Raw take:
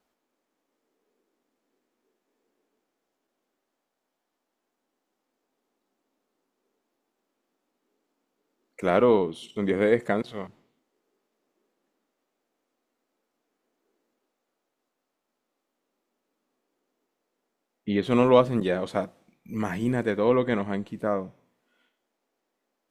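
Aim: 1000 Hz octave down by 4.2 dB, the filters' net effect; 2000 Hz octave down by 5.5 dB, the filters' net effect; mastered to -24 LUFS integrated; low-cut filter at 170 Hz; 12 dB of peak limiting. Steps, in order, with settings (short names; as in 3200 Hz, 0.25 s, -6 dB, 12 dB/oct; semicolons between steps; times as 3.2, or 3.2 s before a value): HPF 170 Hz; bell 1000 Hz -4 dB; bell 2000 Hz -5.5 dB; gain +6.5 dB; limiter -12 dBFS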